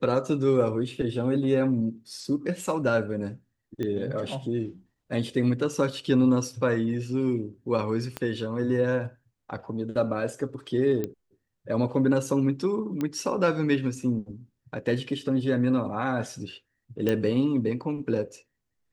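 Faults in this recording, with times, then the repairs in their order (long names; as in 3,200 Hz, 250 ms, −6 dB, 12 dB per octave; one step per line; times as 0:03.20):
0:03.83: click −20 dBFS
0:08.17: click −16 dBFS
0:11.04: click −17 dBFS
0:13.01: click −17 dBFS
0:17.09: click −13 dBFS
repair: click removal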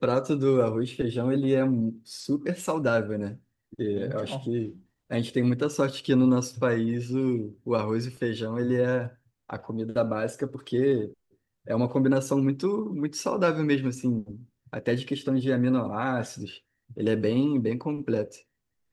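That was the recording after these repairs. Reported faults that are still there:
0:08.17: click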